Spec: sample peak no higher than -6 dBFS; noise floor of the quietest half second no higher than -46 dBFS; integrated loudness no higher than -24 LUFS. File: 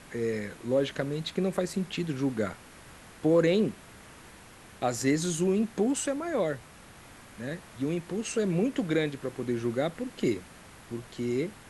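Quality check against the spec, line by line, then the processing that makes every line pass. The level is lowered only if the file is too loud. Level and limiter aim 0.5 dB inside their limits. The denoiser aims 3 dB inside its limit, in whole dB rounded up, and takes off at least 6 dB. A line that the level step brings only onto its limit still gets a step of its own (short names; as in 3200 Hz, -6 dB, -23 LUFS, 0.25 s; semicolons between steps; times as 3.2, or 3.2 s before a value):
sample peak -13.0 dBFS: OK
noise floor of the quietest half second -51 dBFS: OK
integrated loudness -30.0 LUFS: OK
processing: none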